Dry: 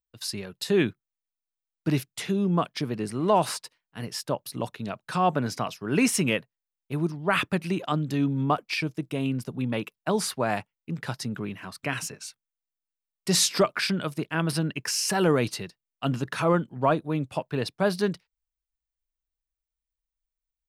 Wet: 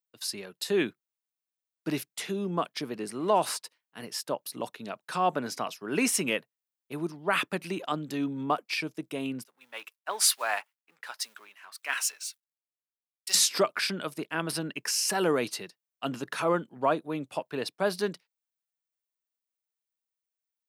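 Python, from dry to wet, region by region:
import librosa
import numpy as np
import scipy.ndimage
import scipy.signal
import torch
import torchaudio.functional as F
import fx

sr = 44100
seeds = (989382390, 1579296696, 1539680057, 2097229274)

y = fx.chain(x, sr, fx.law_mismatch(coded='mu'),
    fx.highpass(hz=1100.0, slope=12),
    fx.band_widen(depth_pct=100), at=(9.44, 13.35))
y = scipy.signal.sosfilt(scipy.signal.butter(2, 260.0, 'highpass', fs=sr, output='sos'), y)
y = fx.high_shelf(y, sr, hz=8400.0, db=5.0)
y = y * librosa.db_to_amplitude(-2.5)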